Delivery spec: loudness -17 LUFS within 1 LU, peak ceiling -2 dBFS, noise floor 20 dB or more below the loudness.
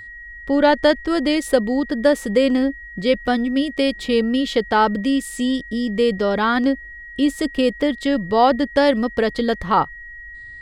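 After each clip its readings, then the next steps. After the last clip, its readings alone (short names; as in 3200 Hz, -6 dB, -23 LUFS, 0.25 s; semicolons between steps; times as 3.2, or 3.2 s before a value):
steady tone 1900 Hz; tone level -35 dBFS; loudness -19.5 LUFS; peak -2.0 dBFS; loudness target -17.0 LUFS
-> notch 1900 Hz, Q 30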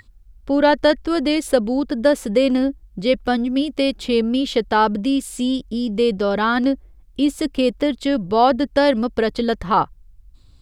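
steady tone none; loudness -19.5 LUFS; peak -2.0 dBFS; loudness target -17.0 LUFS
-> gain +2.5 dB; limiter -2 dBFS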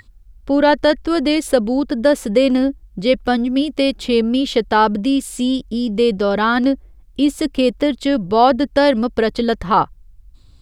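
loudness -17.0 LUFS; peak -2.0 dBFS; noise floor -47 dBFS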